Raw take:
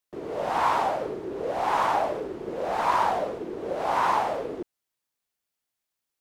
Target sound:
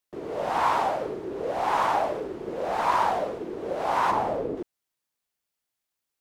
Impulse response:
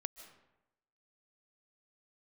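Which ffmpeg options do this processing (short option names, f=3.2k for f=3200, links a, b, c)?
-filter_complex "[0:a]asplit=3[a][b][c];[a]afade=t=out:st=4.1:d=0.02[d];[b]tiltshelf=f=700:g=7,afade=t=in:st=4.1:d=0.02,afade=t=out:st=4.56:d=0.02[e];[c]afade=t=in:st=4.56:d=0.02[f];[d][e][f]amix=inputs=3:normalize=0"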